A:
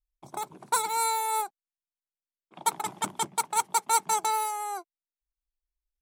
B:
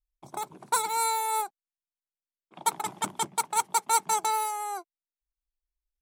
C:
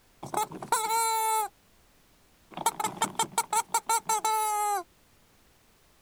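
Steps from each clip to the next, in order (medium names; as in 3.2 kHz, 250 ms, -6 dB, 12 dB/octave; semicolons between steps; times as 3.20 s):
no audible change
compression 5:1, threshold -33 dBFS, peak gain reduction 13 dB; added noise pink -70 dBFS; trim +8.5 dB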